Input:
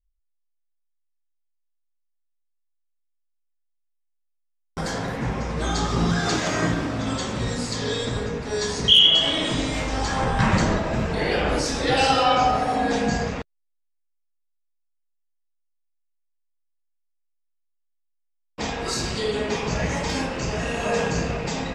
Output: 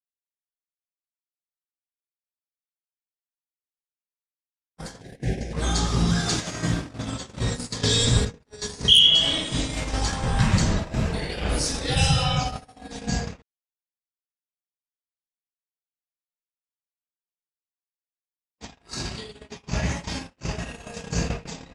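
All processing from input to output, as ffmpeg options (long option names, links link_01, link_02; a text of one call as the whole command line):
ffmpeg -i in.wav -filter_complex "[0:a]asettb=1/sr,asplit=3[link_01][link_02][link_03];[link_01]atrim=end=5.014[link_04];[link_02]atrim=start=5.01:end=5.53,asetpts=PTS-STARTPTS,afade=type=in:duration=0.004:curve=qsin,afade=type=out:start_time=0.516:duration=0.004:curve=qsin,asuperstop=centerf=1100:order=12:qfactor=1.4,equalizer=frequency=360:width=3.3:gain=7.5[link_05];[link_03]atrim=start=5.526[link_06];[link_04][link_05]acrossfade=duration=0.004:curve1=hsin:curve2=qsin[link_07];[link_07][link_06]acrossfade=duration=0.004:curve1=qsin:curve2=hsin,asettb=1/sr,asplit=3[link_08][link_09][link_10];[link_08]atrim=end=7.834[link_11];[link_09]atrim=start=7.83:end=8.25,asetpts=PTS-STARTPTS,afade=type=in:duration=0.004:curve=qsin,afade=type=out:start_time=0.416:duration=0.004:curve=qsin,highshelf=frequency=7200:gain=5,acontrast=89[link_12];[link_10]atrim=start=8.246[link_13];[link_11][link_12]acrossfade=duration=0.004:curve1=hsin:curve2=qsin[link_14];[link_14][link_13]acrossfade=duration=0.004:curve1=qsin:curve2=hsin,asettb=1/sr,asplit=3[link_15][link_16][link_17];[link_15]atrim=end=11.954[link_18];[link_16]atrim=start=11.95:end=12.4,asetpts=PTS-STARTPTS,afade=type=in:duration=0.004:curve=qsin,afade=type=out:start_time=0.446:duration=0.004:curve=qsin,asuperstop=centerf=4500:order=8:qfactor=6.7,lowshelf=frequency=200:width_type=q:width=3:gain=7.5[link_19];[link_17]atrim=start=12.396[link_20];[link_18][link_19]acrossfade=duration=0.004:curve1=hsin:curve2=qsin[link_21];[link_21][link_20]acrossfade=duration=0.004:curve1=qsin:curve2=hsin,asettb=1/sr,asplit=3[link_22][link_23][link_24];[link_22]atrim=end=18.654[link_25];[link_23]atrim=start=18.65:end=20.73,asetpts=PTS-STARTPTS,afade=type=in:duration=0.004:curve=qsin,afade=type=out:start_time=2.076:duration=0.004:curve=qsin,acrossover=split=7100[link_26][link_27];[link_27]acompressor=threshold=-51dB:ratio=4:attack=1:release=60[link_28];[link_26][link_28]amix=inputs=2:normalize=0,highpass=frequency=41:width=0.5412,highpass=frequency=41:width=1.3066,bandreject=frequency=480:width=5.9[link_29];[link_24]atrim=start=20.726[link_30];[link_25][link_29]acrossfade=duration=0.004:curve1=hsin:curve2=qsin[link_31];[link_31][link_30]acrossfade=duration=0.004:curve1=qsin:curve2=hsin,acrossover=split=180|3000[link_32][link_33][link_34];[link_33]acompressor=threshold=-31dB:ratio=6[link_35];[link_32][link_35][link_34]amix=inputs=3:normalize=0,agate=range=-55dB:threshold=-27dB:ratio=16:detection=peak,equalizer=frequency=9700:width=5.1:gain=11.5,volume=3dB" out.wav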